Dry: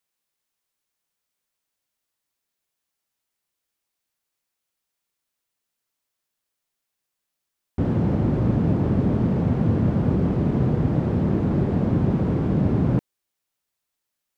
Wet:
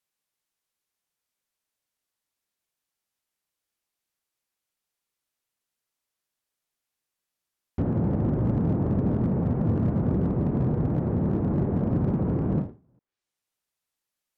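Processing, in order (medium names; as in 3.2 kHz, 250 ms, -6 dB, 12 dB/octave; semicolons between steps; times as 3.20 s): low-pass that closes with the level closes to 1.3 kHz, closed at -18.5 dBFS; overload inside the chain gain 14.5 dB; endings held to a fixed fall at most 180 dB/s; trim -3 dB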